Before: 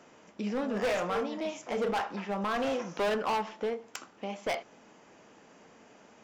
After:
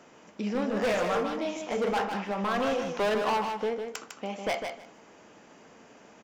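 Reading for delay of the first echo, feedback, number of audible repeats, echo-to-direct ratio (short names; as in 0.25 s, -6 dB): 0.153 s, 17%, 2, -6.0 dB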